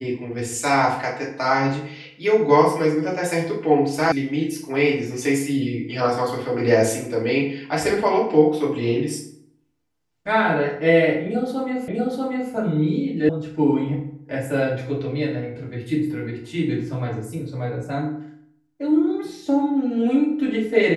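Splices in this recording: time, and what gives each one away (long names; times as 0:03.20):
0:04.12: cut off before it has died away
0:11.88: the same again, the last 0.64 s
0:13.29: cut off before it has died away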